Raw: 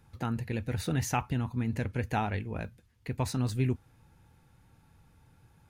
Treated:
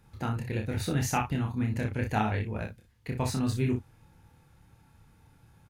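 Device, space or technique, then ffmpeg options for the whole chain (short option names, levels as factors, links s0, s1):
slapback doubling: -filter_complex "[0:a]asplit=3[s0][s1][s2];[s1]adelay=28,volume=0.708[s3];[s2]adelay=60,volume=0.398[s4];[s0][s3][s4]amix=inputs=3:normalize=0"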